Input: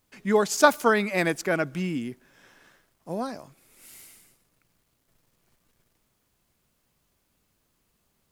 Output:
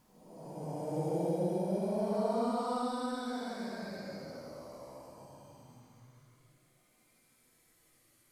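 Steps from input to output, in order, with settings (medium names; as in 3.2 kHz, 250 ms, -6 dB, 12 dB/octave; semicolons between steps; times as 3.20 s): Doppler pass-by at 2.42 s, 29 m/s, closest 8.6 m; Paulstretch 12×, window 0.10 s, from 2.85 s; trim +3.5 dB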